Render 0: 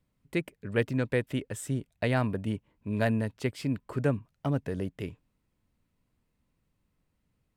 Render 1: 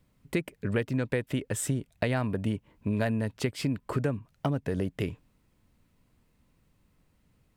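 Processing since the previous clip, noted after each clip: compressor 6:1, threshold -34 dBFS, peak gain reduction 12.5 dB; gain +8.5 dB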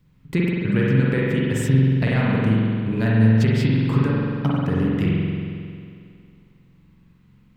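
fifteen-band EQ 160 Hz +8 dB, 630 Hz -9 dB, 10000 Hz -9 dB; spring tank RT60 2.3 s, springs 45 ms, chirp 25 ms, DRR -5.5 dB; gain +3 dB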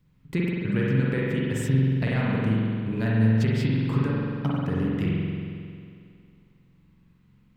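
short-mantissa float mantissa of 8-bit; gain -5 dB

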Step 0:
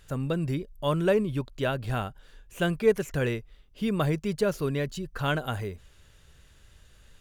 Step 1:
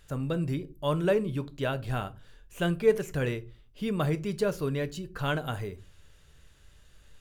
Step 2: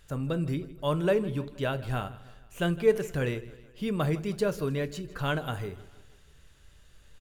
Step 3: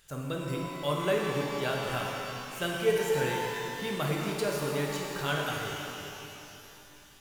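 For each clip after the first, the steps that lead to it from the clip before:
shoebox room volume 140 m³, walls furnished, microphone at 0.39 m; gain -2.5 dB
feedback echo 0.158 s, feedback 53%, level -19 dB
tilt +2 dB/oct; shimmer reverb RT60 3 s, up +12 st, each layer -8 dB, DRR -1.5 dB; gain -3 dB

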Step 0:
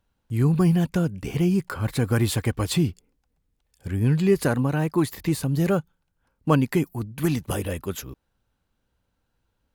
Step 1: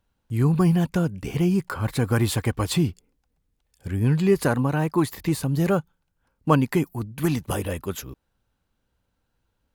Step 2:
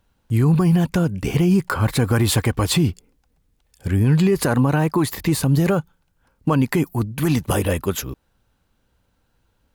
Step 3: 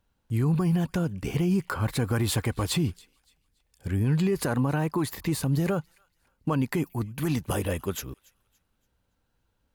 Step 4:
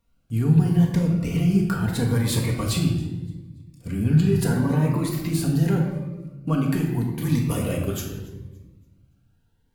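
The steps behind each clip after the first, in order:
dynamic EQ 970 Hz, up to +4 dB, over -40 dBFS, Q 1.6
limiter -17.5 dBFS, peak gain reduction 11 dB; gain +8 dB
thin delay 0.284 s, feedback 32%, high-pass 1600 Hz, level -24 dB; gain -8 dB
reverb RT60 1.2 s, pre-delay 4 ms, DRR -1 dB; cascading phaser rising 0.79 Hz

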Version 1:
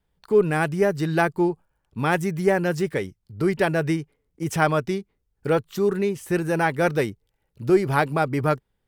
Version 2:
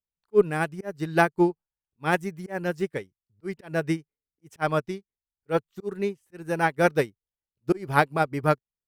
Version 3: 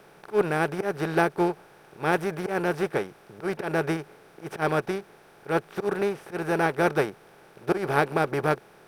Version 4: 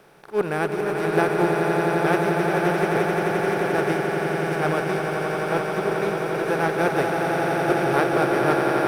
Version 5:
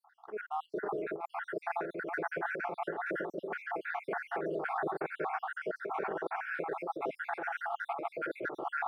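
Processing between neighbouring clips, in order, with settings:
auto swell 0.116 s; upward expander 2.5:1, over -37 dBFS; gain +4 dB
per-bin compression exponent 0.4; gain -6 dB
swelling echo 87 ms, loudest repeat 8, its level -6.5 dB
random spectral dropouts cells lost 67%; three-band isolator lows -18 dB, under 260 Hz, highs -22 dB, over 2100 Hz; negative-ratio compressor -30 dBFS, ratio -1; gain -5.5 dB

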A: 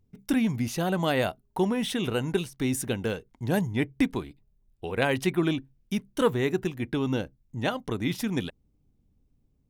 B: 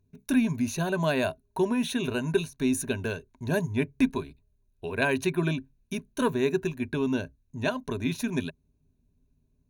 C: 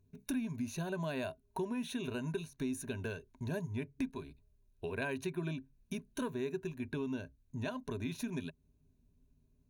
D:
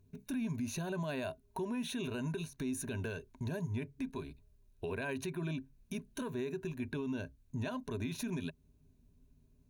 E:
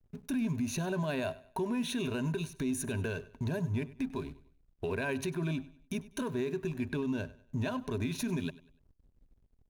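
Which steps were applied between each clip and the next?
ripple EQ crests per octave 1.5, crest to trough 12 dB; gain -2.5 dB
harmonic-percussive split percussive -4 dB; compressor 3:1, threshold -38 dBFS, peak gain reduction 14.5 dB
limiter -34 dBFS, peak gain reduction 10 dB; gain +4 dB
backlash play -55.5 dBFS; feedback echo 98 ms, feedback 35%, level -19 dB; gain +4.5 dB

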